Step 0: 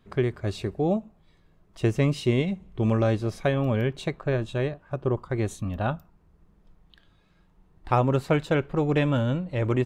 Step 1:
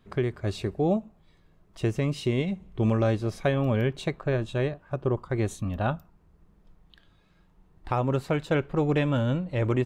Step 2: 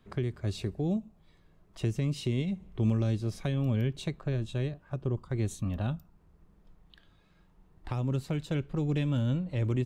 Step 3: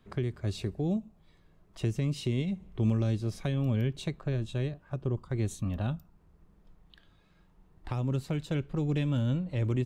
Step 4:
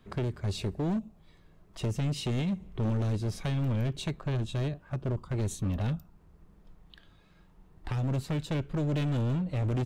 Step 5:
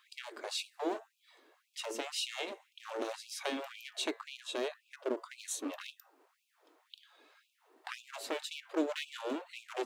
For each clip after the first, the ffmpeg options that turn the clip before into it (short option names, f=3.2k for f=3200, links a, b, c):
-af "alimiter=limit=-14.5dB:level=0:latency=1:release=328"
-filter_complex "[0:a]acrossover=split=300|3000[a][b][c];[b]acompressor=threshold=-41dB:ratio=4[d];[a][d][c]amix=inputs=3:normalize=0,volume=-1.5dB"
-af anull
-af "volume=29.5dB,asoftclip=hard,volume=-29.5dB,volume=3.5dB"
-af "bandreject=f=113.1:t=h:w=4,bandreject=f=226.2:t=h:w=4,bandreject=f=339.3:t=h:w=4,bandreject=f=452.4:t=h:w=4,bandreject=f=565.5:t=h:w=4,bandreject=f=678.6:t=h:w=4,bandreject=f=791.7:t=h:w=4,bandreject=f=904.8:t=h:w=4,bandreject=f=1.0179k:t=h:w=4,bandreject=f=1.131k:t=h:w=4,bandreject=f=1.2441k:t=h:w=4,bandreject=f=1.3572k:t=h:w=4,bandreject=f=1.4703k:t=h:w=4,bandreject=f=1.5834k:t=h:w=4,bandreject=f=1.6965k:t=h:w=4,bandreject=f=1.8096k:t=h:w=4,bandreject=f=1.9227k:t=h:w=4,bandreject=f=2.0358k:t=h:w=4,afftfilt=real='re*gte(b*sr/1024,250*pow(2400/250,0.5+0.5*sin(2*PI*1.9*pts/sr)))':imag='im*gte(b*sr/1024,250*pow(2400/250,0.5+0.5*sin(2*PI*1.9*pts/sr)))':win_size=1024:overlap=0.75,volume=3dB"